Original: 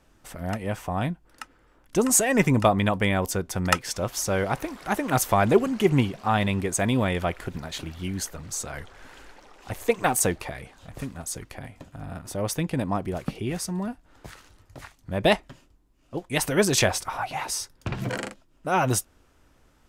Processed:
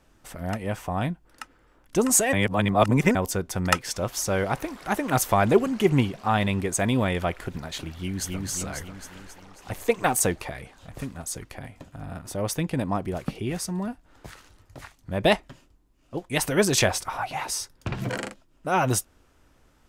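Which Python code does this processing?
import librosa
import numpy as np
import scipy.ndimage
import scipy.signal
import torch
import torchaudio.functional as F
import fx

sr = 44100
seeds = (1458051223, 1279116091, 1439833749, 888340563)

y = fx.echo_throw(x, sr, start_s=7.93, length_s=0.47, ms=270, feedback_pct=55, wet_db=-2.0)
y = fx.edit(y, sr, fx.reverse_span(start_s=2.33, length_s=0.82), tone=tone)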